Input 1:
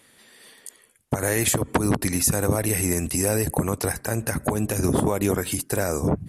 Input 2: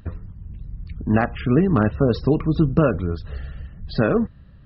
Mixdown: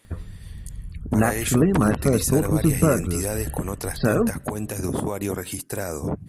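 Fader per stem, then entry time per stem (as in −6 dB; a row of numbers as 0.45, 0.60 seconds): −4.5, −1.5 decibels; 0.00, 0.05 seconds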